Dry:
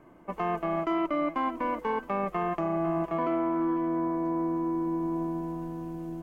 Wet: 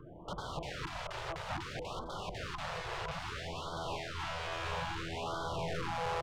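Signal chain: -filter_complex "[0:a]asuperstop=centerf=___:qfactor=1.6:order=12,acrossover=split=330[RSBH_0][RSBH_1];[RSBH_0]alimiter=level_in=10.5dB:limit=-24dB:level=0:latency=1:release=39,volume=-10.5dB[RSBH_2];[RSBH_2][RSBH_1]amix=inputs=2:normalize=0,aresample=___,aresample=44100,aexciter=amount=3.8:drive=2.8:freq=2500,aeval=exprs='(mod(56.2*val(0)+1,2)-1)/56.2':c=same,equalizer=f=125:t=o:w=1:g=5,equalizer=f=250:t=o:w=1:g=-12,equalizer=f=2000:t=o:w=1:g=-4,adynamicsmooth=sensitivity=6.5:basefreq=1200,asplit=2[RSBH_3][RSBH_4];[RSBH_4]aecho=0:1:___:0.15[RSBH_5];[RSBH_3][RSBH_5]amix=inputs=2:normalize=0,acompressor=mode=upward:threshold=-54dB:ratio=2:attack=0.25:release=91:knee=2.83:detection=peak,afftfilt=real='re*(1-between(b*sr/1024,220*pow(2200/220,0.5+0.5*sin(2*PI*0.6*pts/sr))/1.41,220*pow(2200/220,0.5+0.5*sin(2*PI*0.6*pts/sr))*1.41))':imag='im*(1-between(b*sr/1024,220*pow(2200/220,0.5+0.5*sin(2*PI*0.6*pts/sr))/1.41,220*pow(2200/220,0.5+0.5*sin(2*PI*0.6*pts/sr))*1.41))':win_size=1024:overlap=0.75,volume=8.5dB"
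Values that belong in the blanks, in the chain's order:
2200, 8000, 1189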